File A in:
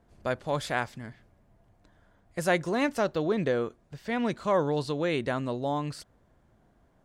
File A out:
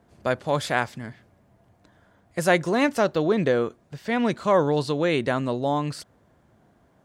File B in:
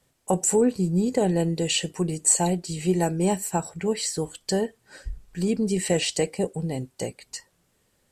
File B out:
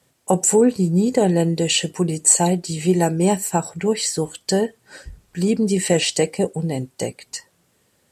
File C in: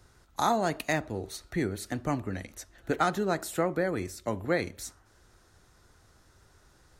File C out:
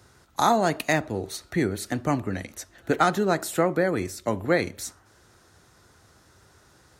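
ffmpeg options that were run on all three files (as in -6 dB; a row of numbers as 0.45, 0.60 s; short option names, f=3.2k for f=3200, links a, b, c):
-af "highpass=83,volume=5.5dB"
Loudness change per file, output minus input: +5.5, +5.5, +5.5 LU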